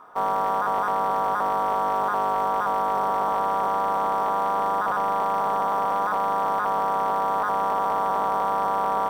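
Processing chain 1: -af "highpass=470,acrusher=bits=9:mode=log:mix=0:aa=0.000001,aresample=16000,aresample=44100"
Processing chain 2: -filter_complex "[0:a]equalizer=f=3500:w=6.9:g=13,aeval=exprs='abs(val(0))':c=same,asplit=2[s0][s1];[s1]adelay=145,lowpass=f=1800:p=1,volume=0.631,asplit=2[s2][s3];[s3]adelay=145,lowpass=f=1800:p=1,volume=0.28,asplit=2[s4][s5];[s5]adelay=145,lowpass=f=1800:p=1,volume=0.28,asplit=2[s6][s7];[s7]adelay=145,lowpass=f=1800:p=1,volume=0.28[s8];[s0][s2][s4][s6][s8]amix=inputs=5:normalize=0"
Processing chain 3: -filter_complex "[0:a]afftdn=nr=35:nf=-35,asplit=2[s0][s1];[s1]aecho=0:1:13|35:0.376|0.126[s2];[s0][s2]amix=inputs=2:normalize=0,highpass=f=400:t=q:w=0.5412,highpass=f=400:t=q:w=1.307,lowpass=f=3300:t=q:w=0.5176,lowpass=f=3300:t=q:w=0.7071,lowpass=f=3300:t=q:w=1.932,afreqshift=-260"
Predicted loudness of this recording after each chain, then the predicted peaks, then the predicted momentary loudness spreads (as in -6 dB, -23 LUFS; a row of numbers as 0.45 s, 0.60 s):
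-24.0 LUFS, -22.0 LUFS, -23.5 LUFS; -13.0 dBFS, -9.5 dBFS, -12.0 dBFS; 0 LU, 0 LU, 1 LU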